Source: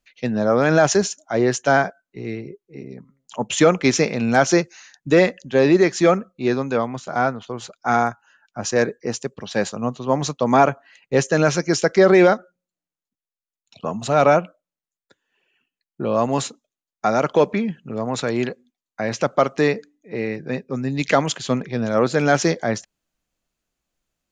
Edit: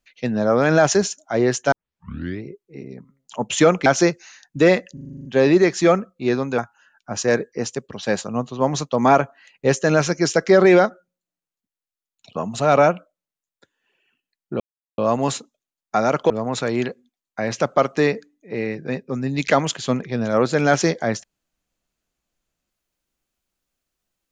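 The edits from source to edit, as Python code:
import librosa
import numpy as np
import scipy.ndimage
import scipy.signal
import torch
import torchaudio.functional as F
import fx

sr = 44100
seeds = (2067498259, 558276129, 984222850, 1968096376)

y = fx.edit(x, sr, fx.tape_start(start_s=1.72, length_s=0.71),
    fx.cut(start_s=3.86, length_s=0.51),
    fx.stutter(start_s=5.44, slice_s=0.04, count=9),
    fx.cut(start_s=6.77, length_s=1.29),
    fx.insert_silence(at_s=16.08, length_s=0.38),
    fx.cut(start_s=17.4, length_s=0.51), tone=tone)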